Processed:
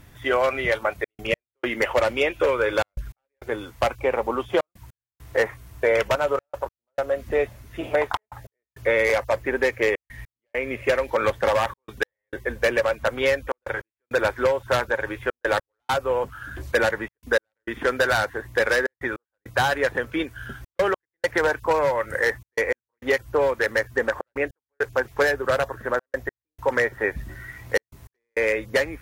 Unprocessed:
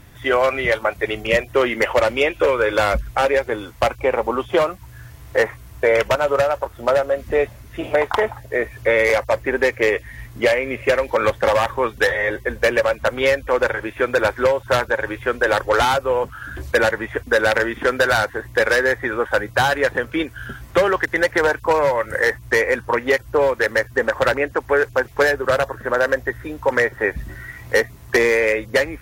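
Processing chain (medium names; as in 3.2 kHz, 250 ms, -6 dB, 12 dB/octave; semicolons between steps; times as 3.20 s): trance gate "xxxxxxx.x..x" 101 bpm -60 dB; trim -4 dB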